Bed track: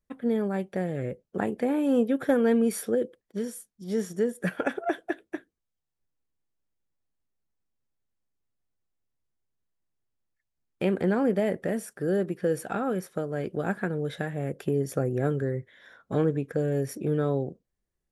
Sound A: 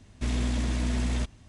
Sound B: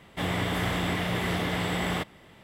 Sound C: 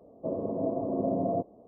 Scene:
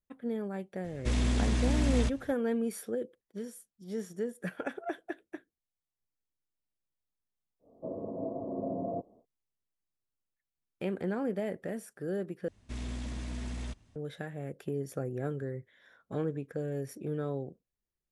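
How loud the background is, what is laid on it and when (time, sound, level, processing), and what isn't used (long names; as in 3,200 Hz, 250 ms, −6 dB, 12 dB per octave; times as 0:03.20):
bed track −8.5 dB
0:00.84: mix in A −0.5 dB
0:07.59: mix in C −6.5 dB, fades 0.10 s
0:12.48: overwrite with A −10.5 dB
not used: B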